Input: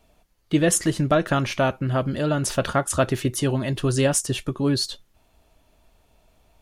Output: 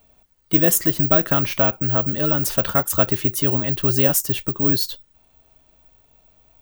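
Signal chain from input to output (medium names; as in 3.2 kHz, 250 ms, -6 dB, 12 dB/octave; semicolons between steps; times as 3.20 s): careless resampling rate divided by 2×, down none, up zero stuff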